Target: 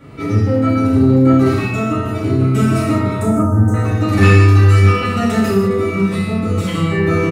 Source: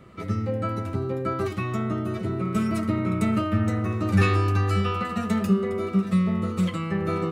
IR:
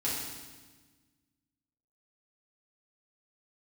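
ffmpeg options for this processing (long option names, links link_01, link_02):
-filter_complex "[0:a]asettb=1/sr,asplit=3[link_01][link_02][link_03];[link_01]atrim=end=3.214[link_04];[link_02]atrim=start=3.21:end=3.74,asetpts=PTS-STARTPTS,afade=type=in:duration=0.004:curve=qsin,afade=type=out:start_time=0.526:duration=0.004:curve=qsin,asuperstop=centerf=3000:order=8:qfactor=0.57[link_05];[link_03]atrim=start=3.736[link_06];[link_04][link_05]acrossfade=duration=0.004:curve1=hsin:curve2=qsin[link_07];[link_07][link_06]acrossfade=duration=0.004:curve1=qsin:curve2=hsin[link_08];[1:a]atrim=start_sample=2205,afade=type=out:start_time=0.26:duration=0.01,atrim=end_sample=11907[link_09];[link_08][link_09]afir=irnorm=-1:irlink=0,asoftclip=type=tanh:threshold=-8dB,asplit=2[link_10][link_11];[link_11]adelay=30,volume=-10.5dB[link_12];[link_10][link_12]amix=inputs=2:normalize=0,volume=6dB"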